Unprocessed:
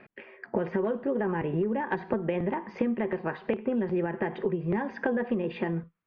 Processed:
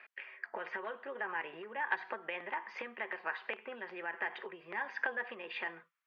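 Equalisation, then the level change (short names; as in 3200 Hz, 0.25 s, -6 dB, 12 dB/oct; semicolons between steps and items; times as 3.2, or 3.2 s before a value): HPF 1500 Hz 12 dB/oct; high shelf 4200 Hz -8 dB; +4.5 dB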